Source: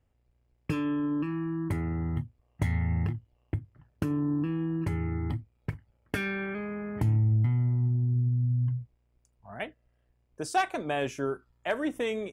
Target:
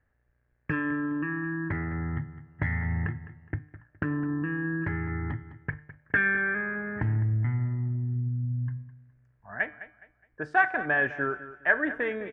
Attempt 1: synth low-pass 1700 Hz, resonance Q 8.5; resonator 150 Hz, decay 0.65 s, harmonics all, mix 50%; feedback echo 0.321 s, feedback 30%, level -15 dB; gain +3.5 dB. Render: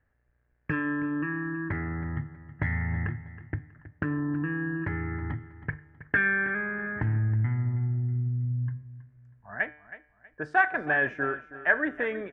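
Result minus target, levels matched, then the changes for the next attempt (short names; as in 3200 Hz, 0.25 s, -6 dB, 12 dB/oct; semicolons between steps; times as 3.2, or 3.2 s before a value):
echo 0.113 s late
change: feedback echo 0.208 s, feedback 30%, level -15 dB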